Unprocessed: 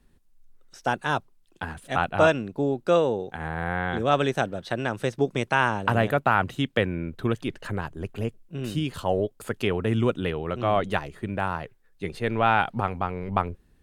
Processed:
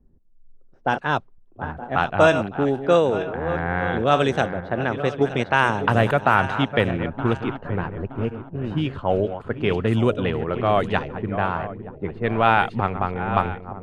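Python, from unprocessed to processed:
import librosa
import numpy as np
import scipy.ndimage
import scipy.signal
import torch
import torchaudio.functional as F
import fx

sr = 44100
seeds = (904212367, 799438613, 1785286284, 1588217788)

y = fx.reverse_delay_fb(x, sr, ms=461, feedback_pct=60, wet_db=-10.5)
y = fx.env_lowpass(y, sr, base_hz=500.0, full_db=-17.0)
y = y * 10.0 ** (3.5 / 20.0)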